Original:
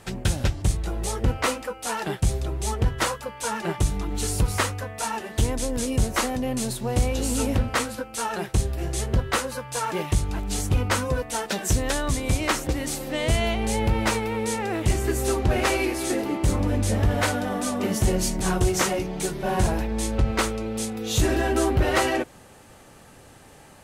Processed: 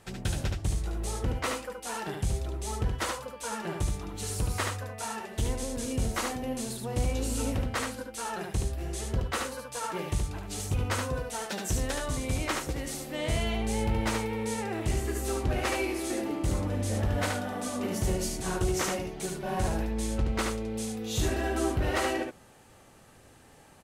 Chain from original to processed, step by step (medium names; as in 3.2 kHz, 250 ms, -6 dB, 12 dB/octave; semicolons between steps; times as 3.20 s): delay 73 ms -4 dB; trim -8 dB